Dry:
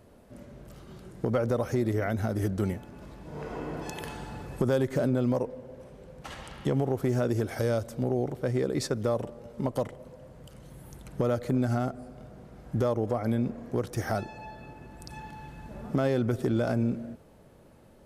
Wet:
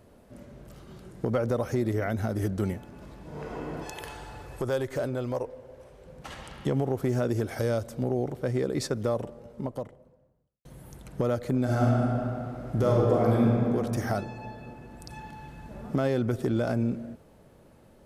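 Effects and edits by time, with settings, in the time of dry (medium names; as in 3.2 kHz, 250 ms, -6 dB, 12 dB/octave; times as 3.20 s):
3.85–6.06 s: peaking EQ 200 Hz -12 dB 1.1 oct
9.04–10.65 s: studio fade out
11.62–13.56 s: reverb throw, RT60 2.8 s, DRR -4 dB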